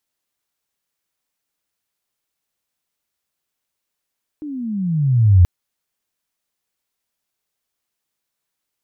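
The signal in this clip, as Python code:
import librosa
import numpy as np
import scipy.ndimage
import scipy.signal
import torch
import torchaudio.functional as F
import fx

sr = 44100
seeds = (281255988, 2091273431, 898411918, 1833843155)

y = fx.chirp(sr, length_s=1.03, from_hz=310.0, to_hz=85.0, law='logarithmic', from_db=-26.5, to_db=-5.5)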